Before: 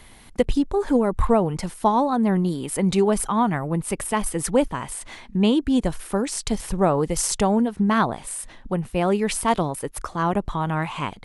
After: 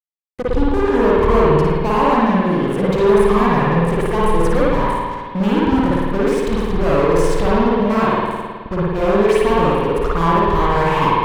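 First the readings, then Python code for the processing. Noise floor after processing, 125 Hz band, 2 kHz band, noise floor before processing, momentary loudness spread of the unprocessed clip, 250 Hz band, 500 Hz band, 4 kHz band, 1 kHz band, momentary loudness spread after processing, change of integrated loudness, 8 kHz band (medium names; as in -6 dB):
-30 dBFS, +6.5 dB, +8.5 dB, -46 dBFS, 9 LU, +4.5 dB, +8.5 dB, +3.0 dB, +7.5 dB, 7 LU, +6.5 dB, -10.5 dB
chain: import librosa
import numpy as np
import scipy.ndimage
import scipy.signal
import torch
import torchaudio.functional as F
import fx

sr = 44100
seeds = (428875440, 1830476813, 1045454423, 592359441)

p1 = fx.fade_in_head(x, sr, length_s=0.89)
p2 = fx.high_shelf(p1, sr, hz=8100.0, db=-12.0)
p3 = fx.rider(p2, sr, range_db=10, speed_s=2.0)
p4 = fx.fuzz(p3, sr, gain_db=29.0, gate_db=-36.0)
p5 = fx.high_shelf(p4, sr, hz=2500.0, db=-11.0)
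p6 = p5 + fx.room_flutter(p5, sr, wall_m=9.5, rt60_s=0.5, dry=0)
p7 = fx.rev_spring(p6, sr, rt60_s=1.7, pass_ms=(53,), chirp_ms=30, drr_db=-6.5)
y = p7 * 10.0 ** (-5.5 / 20.0)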